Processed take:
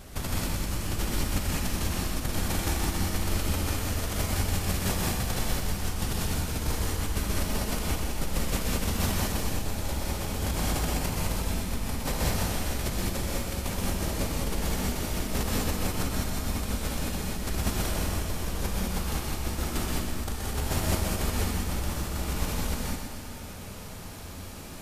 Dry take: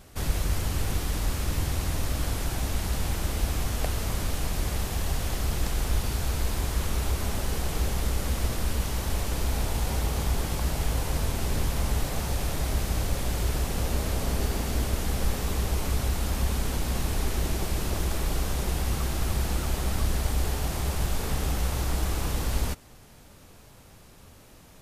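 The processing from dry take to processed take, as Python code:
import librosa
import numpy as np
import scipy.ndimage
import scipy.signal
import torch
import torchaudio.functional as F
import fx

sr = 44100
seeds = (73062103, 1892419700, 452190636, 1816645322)

y = fx.over_compress(x, sr, threshold_db=-31.0, ratio=-0.5)
y = fx.echo_feedback(y, sr, ms=125, feedback_pct=59, wet_db=-6.5)
y = fx.rev_gated(y, sr, seeds[0], gate_ms=230, shape='rising', drr_db=-3.5)
y = y * 10.0 ** (-2.0 / 20.0)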